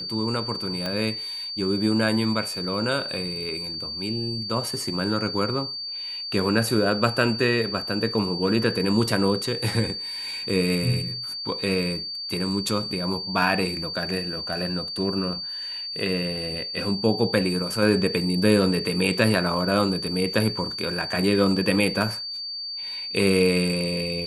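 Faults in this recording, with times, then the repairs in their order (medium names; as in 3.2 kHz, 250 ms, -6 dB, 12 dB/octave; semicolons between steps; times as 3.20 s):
whine 4.6 kHz -30 dBFS
0.86 s: pop -14 dBFS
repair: de-click; band-stop 4.6 kHz, Q 30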